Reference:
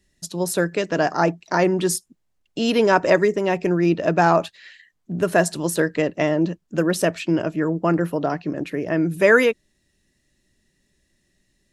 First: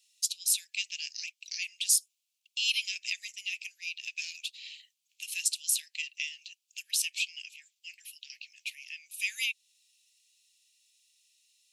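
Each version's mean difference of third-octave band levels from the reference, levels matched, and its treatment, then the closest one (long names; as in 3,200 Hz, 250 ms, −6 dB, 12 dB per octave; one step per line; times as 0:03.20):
21.5 dB: in parallel at +2.5 dB: downward compressor, threshold −26 dBFS, peak gain reduction 15.5 dB
on the sum: Butterworth high-pass 2,400 Hz 72 dB per octave
level −2.5 dB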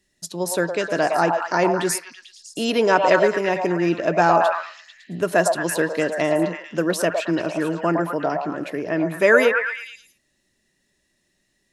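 5.0 dB: low-shelf EQ 150 Hz −10.5 dB
echo through a band-pass that steps 111 ms, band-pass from 780 Hz, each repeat 0.7 octaves, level −1 dB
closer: second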